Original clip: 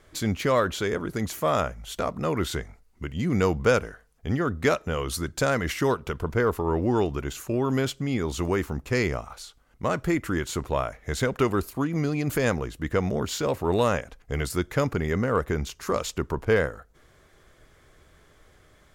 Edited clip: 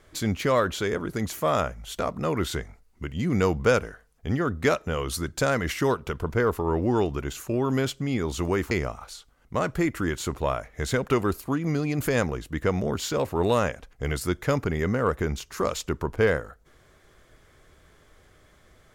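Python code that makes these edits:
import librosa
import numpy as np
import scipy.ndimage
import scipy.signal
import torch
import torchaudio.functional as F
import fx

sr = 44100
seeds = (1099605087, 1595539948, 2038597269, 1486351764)

y = fx.edit(x, sr, fx.cut(start_s=8.71, length_s=0.29), tone=tone)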